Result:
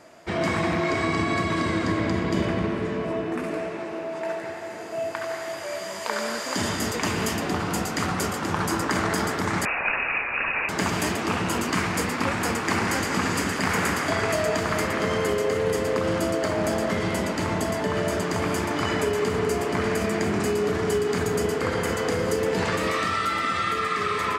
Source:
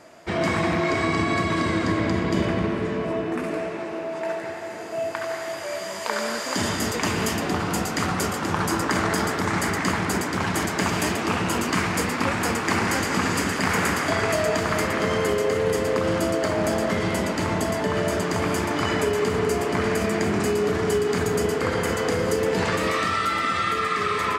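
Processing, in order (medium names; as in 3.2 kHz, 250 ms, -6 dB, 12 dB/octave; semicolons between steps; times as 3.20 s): 9.65–10.69 s: frequency inversion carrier 2.7 kHz; trim -1.5 dB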